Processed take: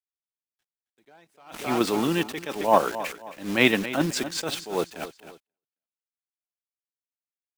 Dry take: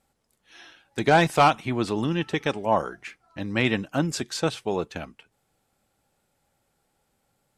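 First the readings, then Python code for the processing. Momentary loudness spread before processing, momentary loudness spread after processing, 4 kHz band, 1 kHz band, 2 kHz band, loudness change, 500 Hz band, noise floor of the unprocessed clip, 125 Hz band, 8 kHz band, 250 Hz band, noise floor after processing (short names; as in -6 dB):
17 LU, 15 LU, +1.0 dB, -3.5 dB, -0.5 dB, -1.0 dB, -1.0 dB, -73 dBFS, -7.0 dB, +2.0 dB, 0.0 dB, under -85 dBFS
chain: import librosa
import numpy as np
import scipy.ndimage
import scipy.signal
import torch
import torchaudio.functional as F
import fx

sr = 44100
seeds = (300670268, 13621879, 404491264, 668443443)

p1 = scipy.signal.sosfilt(scipy.signal.butter(2, 230.0, 'highpass', fs=sr, output='sos'), x)
p2 = fx.level_steps(p1, sr, step_db=12)
p3 = p1 + (p2 * librosa.db_to_amplitude(2.5))
p4 = fx.quant_dither(p3, sr, seeds[0], bits=6, dither='none')
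p5 = fx.echo_feedback(p4, sr, ms=268, feedback_pct=37, wet_db=-15.5)
y = fx.attack_slew(p5, sr, db_per_s=140.0)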